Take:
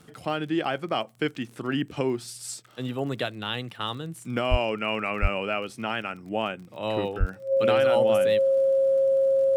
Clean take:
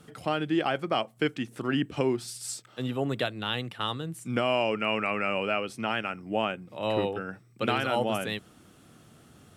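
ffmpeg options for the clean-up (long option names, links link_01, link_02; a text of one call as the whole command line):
ffmpeg -i in.wav -filter_complex "[0:a]adeclick=threshold=4,bandreject=frequency=540:width=30,asplit=3[link_01][link_02][link_03];[link_01]afade=type=out:start_time=4.5:duration=0.02[link_04];[link_02]highpass=frequency=140:width=0.5412,highpass=frequency=140:width=1.3066,afade=type=in:start_time=4.5:duration=0.02,afade=type=out:start_time=4.62:duration=0.02[link_05];[link_03]afade=type=in:start_time=4.62:duration=0.02[link_06];[link_04][link_05][link_06]amix=inputs=3:normalize=0,asplit=3[link_07][link_08][link_09];[link_07]afade=type=out:start_time=5.21:duration=0.02[link_10];[link_08]highpass=frequency=140:width=0.5412,highpass=frequency=140:width=1.3066,afade=type=in:start_time=5.21:duration=0.02,afade=type=out:start_time=5.33:duration=0.02[link_11];[link_09]afade=type=in:start_time=5.33:duration=0.02[link_12];[link_10][link_11][link_12]amix=inputs=3:normalize=0,asplit=3[link_13][link_14][link_15];[link_13]afade=type=out:start_time=7.19:duration=0.02[link_16];[link_14]highpass=frequency=140:width=0.5412,highpass=frequency=140:width=1.3066,afade=type=in:start_time=7.19:duration=0.02,afade=type=out:start_time=7.31:duration=0.02[link_17];[link_15]afade=type=in:start_time=7.31:duration=0.02[link_18];[link_16][link_17][link_18]amix=inputs=3:normalize=0" out.wav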